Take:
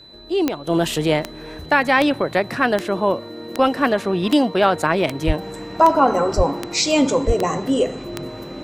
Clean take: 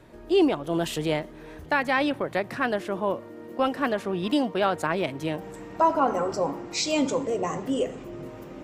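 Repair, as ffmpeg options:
ffmpeg -i in.wav -filter_complex "[0:a]adeclick=threshold=4,bandreject=frequency=4000:width=30,asplit=3[link_01][link_02][link_03];[link_01]afade=type=out:start_time=5.26:duration=0.02[link_04];[link_02]highpass=frequency=140:width=0.5412,highpass=frequency=140:width=1.3066,afade=type=in:start_time=5.26:duration=0.02,afade=type=out:start_time=5.38:duration=0.02[link_05];[link_03]afade=type=in:start_time=5.38:duration=0.02[link_06];[link_04][link_05][link_06]amix=inputs=3:normalize=0,asplit=3[link_07][link_08][link_09];[link_07]afade=type=out:start_time=6.36:duration=0.02[link_10];[link_08]highpass=frequency=140:width=0.5412,highpass=frequency=140:width=1.3066,afade=type=in:start_time=6.36:duration=0.02,afade=type=out:start_time=6.48:duration=0.02[link_11];[link_09]afade=type=in:start_time=6.48:duration=0.02[link_12];[link_10][link_11][link_12]amix=inputs=3:normalize=0,asplit=3[link_13][link_14][link_15];[link_13]afade=type=out:start_time=7.26:duration=0.02[link_16];[link_14]highpass=frequency=140:width=0.5412,highpass=frequency=140:width=1.3066,afade=type=in:start_time=7.26:duration=0.02,afade=type=out:start_time=7.38:duration=0.02[link_17];[link_15]afade=type=in:start_time=7.38:duration=0.02[link_18];[link_16][link_17][link_18]amix=inputs=3:normalize=0,asetnsamples=nb_out_samples=441:pad=0,asendcmd='0.67 volume volume -7.5dB',volume=0dB" out.wav

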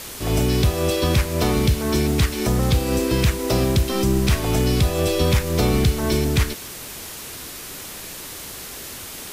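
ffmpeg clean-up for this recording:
ffmpeg -i in.wav -af "adeclick=threshold=4,afftdn=noise_reduction=30:noise_floor=-35" out.wav

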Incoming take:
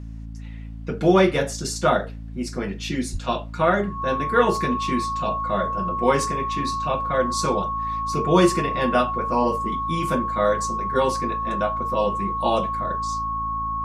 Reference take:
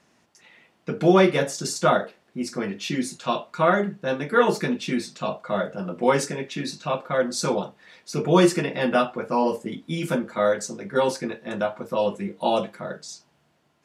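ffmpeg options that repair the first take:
ffmpeg -i in.wav -filter_complex "[0:a]bandreject=frequency=55.3:width_type=h:width=4,bandreject=frequency=110.6:width_type=h:width=4,bandreject=frequency=165.9:width_type=h:width=4,bandreject=frequency=221.2:width_type=h:width=4,bandreject=frequency=276.5:width_type=h:width=4,bandreject=frequency=1100:width=30,asplit=3[link_01][link_02][link_03];[link_01]afade=type=out:start_time=3.12:duration=0.02[link_04];[link_02]highpass=frequency=140:width=0.5412,highpass=frequency=140:width=1.3066,afade=type=in:start_time=3.12:duration=0.02,afade=type=out:start_time=3.24:duration=0.02[link_05];[link_03]afade=type=in:start_time=3.24:duration=0.02[link_06];[link_04][link_05][link_06]amix=inputs=3:normalize=0" out.wav

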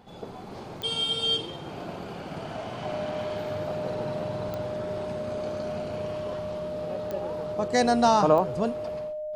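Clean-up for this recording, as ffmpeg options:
ffmpeg -i in.wav -af "adeclick=threshold=4,bandreject=frequency=610:width=30" out.wav

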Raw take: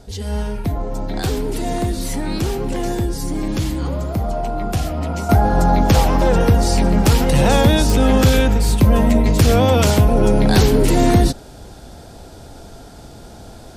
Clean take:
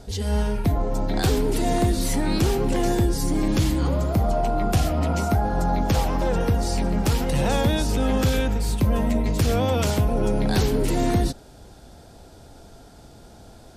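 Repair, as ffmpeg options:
ffmpeg -i in.wav -af "adeclick=threshold=4,asetnsamples=nb_out_samples=441:pad=0,asendcmd='5.29 volume volume -8dB',volume=0dB" out.wav

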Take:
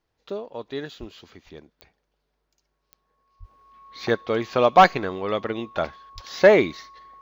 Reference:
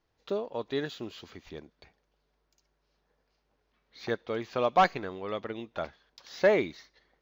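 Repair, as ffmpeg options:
ffmpeg -i in.wav -filter_complex "[0:a]adeclick=threshold=4,bandreject=frequency=1100:width=30,asplit=3[link_01][link_02][link_03];[link_01]afade=type=out:start_time=0.99:duration=0.02[link_04];[link_02]highpass=frequency=140:width=0.5412,highpass=frequency=140:width=1.3066,afade=type=in:start_time=0.99:duration=0.02,afade=type=out:start_time=1.11:duration=0.02[link_05];[link_03]afade=type=in:start_time=1.11:duration=0.02[link_06];[link_04][link_05][link_06]amix=inputs=3:normalize=0,asplit=3[link_07][link_08][link_09];[link_07]afade=type=out:start_time=3.39:duration=0.02[link_10];[link_08]highpass=frequency=140:width=0.5412,highpass=frequency=140:width=1.3066,afade=type=in:start_time=3.39:duration=0.02,afade=type=out:start_time=3.51:duration=0.02[link_11];[link_09]afade=type=in:start_time=3.51:duration=0.02[link_12];[link_10][link_11][link_12]amix=inputs=3:normalize=0,asplit=3[link_13][link_14][link_15];[link_13]afade=type=out:start_time=6.14:duration=0.02[link_16];[link_14]highpass=frequency=140:width=0.5412,highpass=frequency=140:width=1.3066,afade=type=in:start_time=6.14:duration=0.02,afade=type=out:start_time=6.26:duration=0.02[link_17];[link_15]afade=type=in:start_time=6.26:duration=0.02[link_18];[link_16][link_17][link_18]amix=inputs=3:normalize=0,asetnsamples=nb_out_samples=441:pad=0,asendcmd='3.44 volume volume -9dB',volume=0dB" out.wav

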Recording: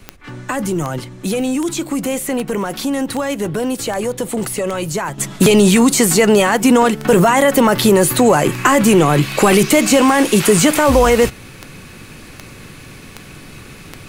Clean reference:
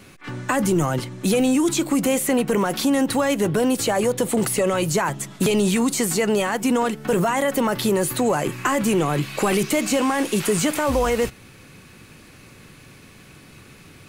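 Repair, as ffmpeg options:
ffmpeg -i in.wav -af "adeclick=threshold=4,agate=range=-21dB:threshold=-29dB,asetnsamples=nb_out_samples=441:pad=0,asendcmd='5.18 volume volume -9dB',volume=0dB" out.wav

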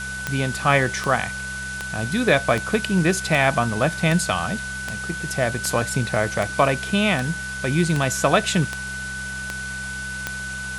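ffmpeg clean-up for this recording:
ffmpeg -i in.wav -af "adeclick=threshold=4,bandreject=frequency=65.2:width_type=h:width=4,bandreject=frequency=130.4:width_type=h:width=4,bandreject=frequency=195.6:width_type=h:width=4,bandreject=frequency=1500:width=30,afwtdn=0.016" out.wav

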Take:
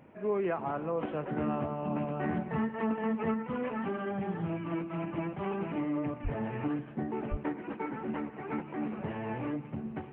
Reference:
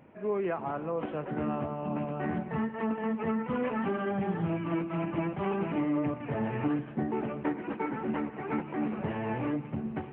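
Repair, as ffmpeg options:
ffmpeg -i in.wav -filter_complex "[0:a]asplit=3[link_01][link_02][link_03];[link_01]afade=type=out:start_time=6.23:duration=0.02[link_04];[link_02]highpass=frequency=140:width=0.5412,highpass=frequency=140:width=1.3066,afade=type=in:start_time=6.23:duration=0.02,afade=type=out:start_time=6.35:duration=0.02[link_05];[link_03]afade=type=in:start_time=6.35:duration=0.02[link_06];[link_04][link_05][link_06]amix=inputs=3:normalize=0,asplit=3[link_07][link_08][link_09];[link_07]afade=type=out:start_time=7.3:duration=0.02[link_10];[link_08]highpass=frequency=140:width=0.5412,highpass=frequency=140:width=1.3066,afade=type=in:start_time=7.3:duration=0.02,afade=type=out:start_time=7.42:duration=0.02[link_11];[link_09]afade=type=in:start_time=7.42:duration=0.02[link_12];[link_10][link_11][link_12]amix=inputs=3:normalize=0,asetnsamples=nb_out_samples=441:pad=0,asendcmd='3.34 volume volume 3.5dB',volume=0dB" out.wav

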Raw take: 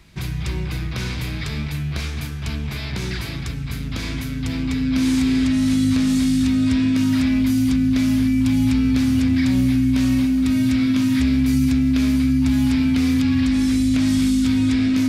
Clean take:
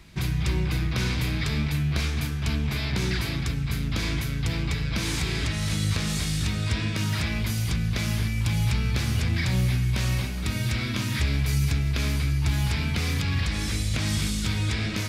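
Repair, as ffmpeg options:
ffmpeg -i in.wav -af "bandreject=frequency=260:width=30" out.wav

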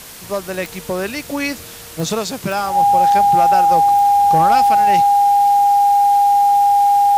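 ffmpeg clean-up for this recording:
ffmpeg -i in.wav -af "adeclick=threshold=4,bandreject=frequency=810:width=30,afwtdn=0.018" out.wav

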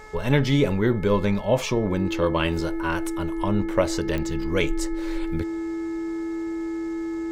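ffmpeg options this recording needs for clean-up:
ffmpeg -i in.wav -af "adeclick=threshold=4,bandreject=frequency=429.6:width_type=h:width=4,bandreject=frequency=859.2:width_type=h:width=4,bandreject=frequency=1288.8:width_type=h:width=4,bandreject=frequency=1718.4:width_type=h:width=4,bandreject=frequency=2148:width_type=h:width=4,bandreject=frequency=330:width=30" out.wav

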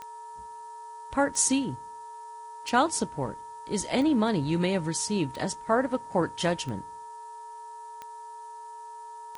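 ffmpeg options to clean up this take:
ffmpeg -i in.wav -af "adeclick=threshold=4,bandreject=frequency=436.7:width_type=h:width=4,bandreject=frequency=873.4:width_type=h:width=4,bandreject=frequency=1310.1:width_type=h:width=4,bandreject=frequency=1746.8:width_type=h:width=4,bandreject=frequency=940:width=30,afftdn=noise_reduction=30:noise_floor=-43" out.wav

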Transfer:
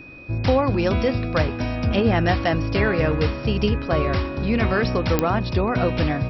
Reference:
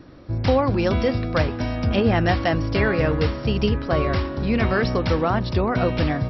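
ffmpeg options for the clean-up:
ffmpeg -i in.wav -af "adeclick=threshold=4,bandreject=frequency=2500:width=30" out.wav

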